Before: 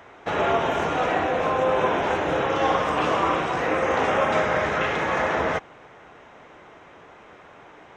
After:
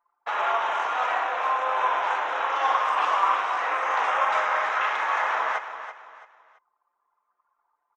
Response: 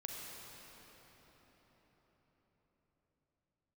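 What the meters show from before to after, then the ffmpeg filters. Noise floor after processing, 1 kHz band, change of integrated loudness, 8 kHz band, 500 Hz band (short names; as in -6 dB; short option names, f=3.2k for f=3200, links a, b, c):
-77 dBFS, +1.0 dB, -1.5 dB, n/a, -10.0 dB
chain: -af "highpass=f=1k:t=q:w=2.1,anlmdn=39.8,aecho=1:1:333|666|999:0.282|0.0902|0.0289,volume=-3.5dB"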